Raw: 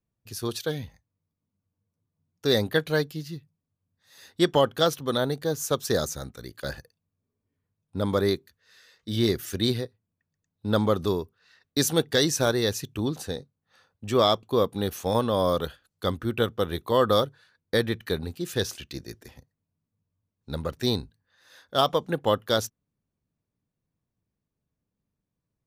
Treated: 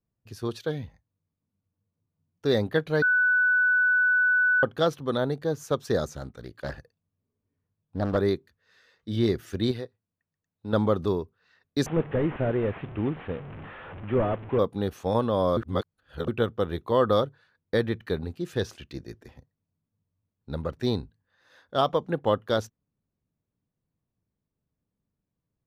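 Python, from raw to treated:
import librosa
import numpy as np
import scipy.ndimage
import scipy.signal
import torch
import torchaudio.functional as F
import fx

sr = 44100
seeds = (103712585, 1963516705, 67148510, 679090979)

y = fx.doppler_dist(x, sr, depth_ms=0.76, at=(6.12, 8.17))
y = fx.low_shelf(y, sr, hz=350.0, db=-7.5, at=(9.71, 10.73))
y = fx.delta_mod(y, sr, bps=16000, step_db=-34.0, at=(11.86, 14.59))
y = fx.edit(y, sr, fx.bleep(start_s=3.02, length_s=1.61, hz=1490.0, db=-16.0),
    fx.reverse_span(start_s=15.57, length_s=0.71), tone=tone)
y = fx.lowpass(y, sr, hz=1700.0, slope=6)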